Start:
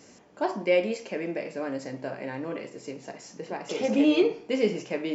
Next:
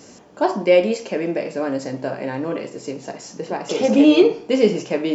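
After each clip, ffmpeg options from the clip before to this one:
ffmpeg -i in.wav -af "equalizer=frequency=2100:width_type=o:width=0.62:gain=-5,volume=9dB" out.wav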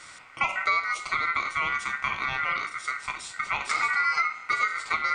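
ffmpeg -i in.wav -af "acompressor=threshold=-21dB:ratio=6,equalizer=frequency=250:width=7.9:gain=-5,aeval=exprs='val(0)*sin(2*PI*1700*n/s)':channel_layout=same,volume=1.5dB" out.wav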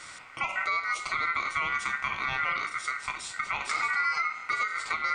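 ffmpeg -i in.wav -af "alimiter=limit=-19dB:level=0:latency=1:release=220,volume=1.5dB" out.wav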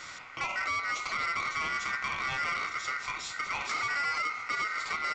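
ffmpeg -i in.wav -af "aresample=16000,asoftclip=type=tanh:threshold=-28dB,aresample=44100,aecho=1:1:558:0.168,volume=1.5dB" out.wav

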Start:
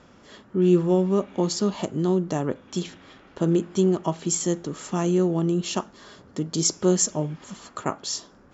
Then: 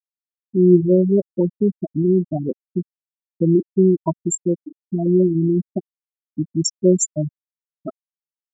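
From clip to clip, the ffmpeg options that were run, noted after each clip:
ffmpeg -i in.wav -af "afftfilt=real='re*gte(hypot(re,im),0.316)':imag='im*gte(hypot(re,im),0.316)':win_size=1024:overlap=0.75,volume=6dB" out.wav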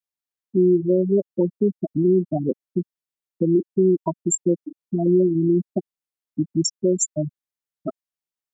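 ffmpeg -i in.wav -filter_complex "[0:a]acrossover=split=220|730[link_01][link_02][link_03];[link_01]acompressor=threshold=-29dB:ratio=6[link_04];[link_04][link_02][link_03]amix=inputs=3:normalize=0,alimiter=limit=-11.5dB:level=0:latency=1:release=266,volume=1.5dB" out.wav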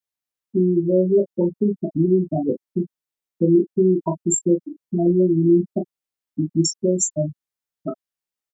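ffmpeg -i in.wav -af "aecho=1:1:18|38:0.531|0.447" out.wav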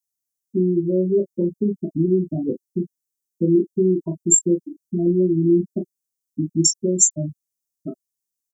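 ffmpeg -i in.wav -af "firequalizer=gain_entry='entry(370,0);entry(940,-21);entry(6100,8)':delay=0.05:min_phase=1,volume=-1dB" out.wav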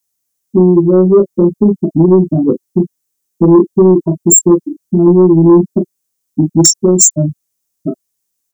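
ffmpeg -i in.wav -af "aeval=exprs='0.841*sin(PI/2*2.82*val(0)/0.841)':channel_layout=same" out.wav

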